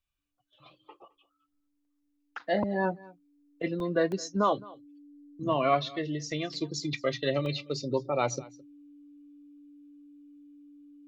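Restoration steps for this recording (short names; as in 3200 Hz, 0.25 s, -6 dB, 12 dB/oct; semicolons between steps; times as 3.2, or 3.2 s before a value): notch 290 Hz, Q 30; interpolate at 1.85/3.8/4.12/6.54/7.46, 1.2 ms; inverse comb 0.214 s -22 dB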